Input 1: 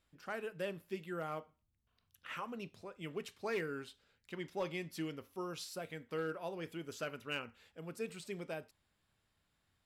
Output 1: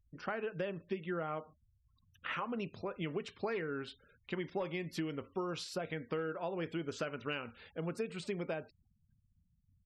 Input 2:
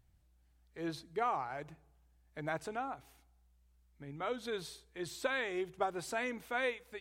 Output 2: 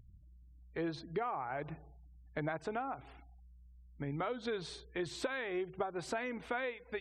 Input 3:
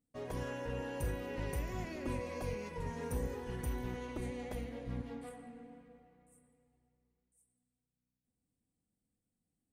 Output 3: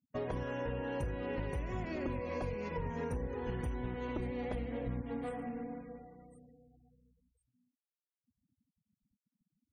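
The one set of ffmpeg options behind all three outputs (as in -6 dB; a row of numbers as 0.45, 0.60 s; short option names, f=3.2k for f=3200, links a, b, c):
-af "acompressor=threshold=-45dB:ratio=8,aemphasis=mode=reproduction:type=50fm,afftfilt=real='re*gte(hypot(re,im),0.000398)':imag='im*gte(hypot(re,im),0.000398)':win_size=1024:overlap=0.75,volume=10.5dB"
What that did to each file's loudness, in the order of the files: +3.0, -1.0, +2.0 LU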